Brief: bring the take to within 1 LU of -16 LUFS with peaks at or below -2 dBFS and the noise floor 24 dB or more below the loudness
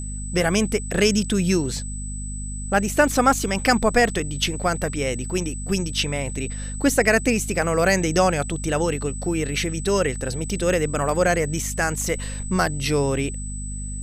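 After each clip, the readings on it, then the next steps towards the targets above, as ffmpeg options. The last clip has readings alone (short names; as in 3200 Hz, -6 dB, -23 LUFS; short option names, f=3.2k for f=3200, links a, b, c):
hum 50 Hz; harmonics up to 250 Hz; hum level -28 dBFS; steady tone 8000 Hz; tone level -35 dBFS; loudness -22.5 LUFS; peak -3.5 dBFS; loudness target -16.0 LUFS
-> -af "bandreject=f=50:t=h:w=4,bandreject=f=100:t=h:w=4,bandreject=f=150:t=h:w=4,bandreject=f=200:t=h:w=4,bandreject=f=250:t=h:w=4"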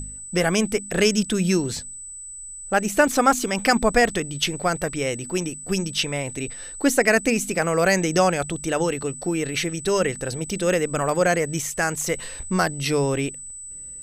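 hum none; steady tone 8000 Hz; tone level -35 dBFS
-> -af "bandreject=f=8k:w=30"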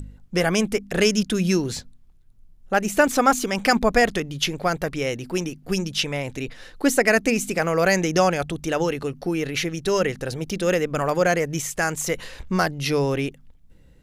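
steady tone none; loudness -22.5 LUFS; peak -4.5 dBFS; loudness target -16.0 LUFS
-> -af "volume=6.5dB,alimiter=limit=-2dB:level=0:latency=1"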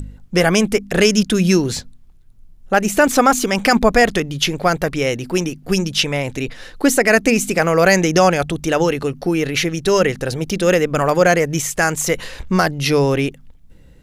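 loudness -16.5 LUFS; peak -2.0 dBFS; noise floor -45 dBFS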